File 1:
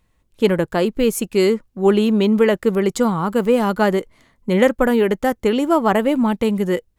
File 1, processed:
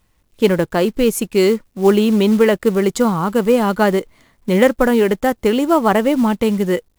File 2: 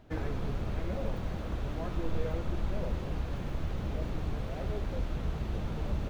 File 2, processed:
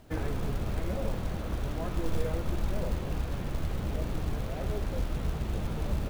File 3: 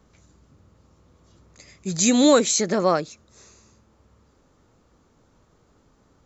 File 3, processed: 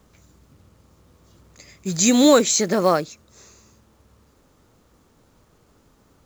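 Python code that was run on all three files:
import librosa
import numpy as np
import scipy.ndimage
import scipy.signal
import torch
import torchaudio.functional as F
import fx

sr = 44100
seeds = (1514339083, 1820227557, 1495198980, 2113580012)

y = fx.quant_companded(x, sr, bits=6)
y = y * librosa.db_to_amplitude(2.0)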